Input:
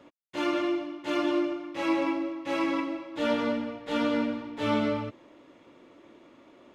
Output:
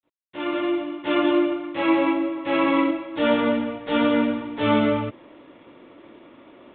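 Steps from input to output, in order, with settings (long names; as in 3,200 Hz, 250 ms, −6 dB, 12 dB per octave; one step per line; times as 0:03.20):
fade in at the beginning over 0.93 s
0:02.31–0:02.91: flutter between parallel walls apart 11.2 metres, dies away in 0.62 s
level +7 dB
G.726 40 kbit/s 8,000 Hz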